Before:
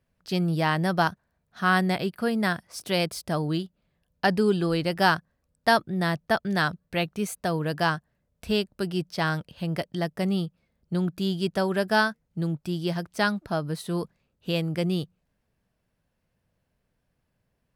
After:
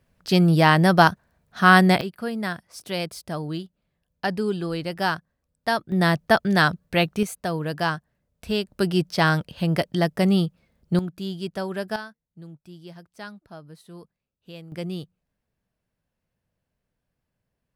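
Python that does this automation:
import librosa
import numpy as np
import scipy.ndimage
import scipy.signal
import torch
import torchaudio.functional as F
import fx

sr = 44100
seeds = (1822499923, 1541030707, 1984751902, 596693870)

y = fx.gain(x, sr, db=fx.steps((0.0, 8.0), (2.01, -3.0), (5.92, 6.0), (7.23, 0.0), (8.67, 6.5), (10.99, -4.0), (11.96, -14.5), (14.72, -5.0)))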